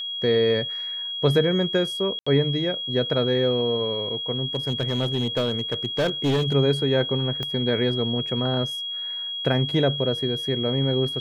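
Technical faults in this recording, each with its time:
whistle 3,300 Hz −28 dBFS
0:02.19–0:02.27: drop-out 75 ms
0:04.54–0:06.54: clipping −18 dBFS
0:07.43: click −16 dBFS

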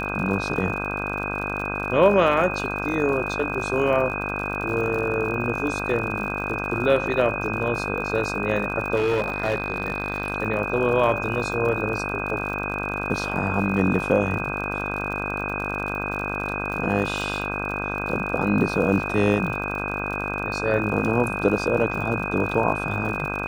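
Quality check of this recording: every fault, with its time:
mains buzz 50 Hz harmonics 32 −30 dBFS
surface crackle 73 per second −31 dBFS
whistle 2,500 Hz −29 dBFS
0:08.95–0:10.32: clipping −18 dBFS

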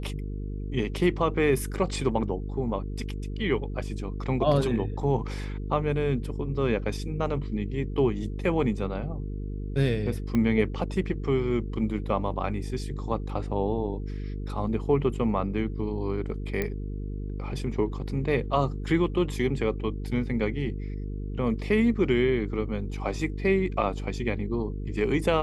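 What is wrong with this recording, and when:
mains buzz 50 Hz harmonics 9 −33 dBFS
0:10.35: click −16 dBFS
0:16.62: click −15 dBFS

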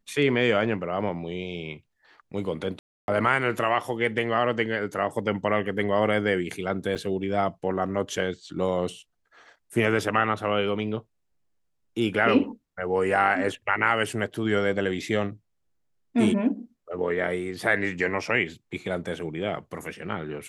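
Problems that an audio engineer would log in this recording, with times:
0:02.79–0:03.08: drop-out 291 ms
0:06.95–0:06.96: drop-out 5.8 ms

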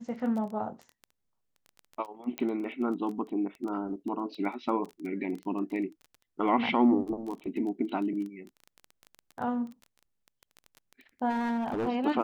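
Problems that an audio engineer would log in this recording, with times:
surface crackle 14 per second −36 dBFS
0:02.38: click −18 dBFS
0:11.29–0:11.89: clipping −26.5 dBFS

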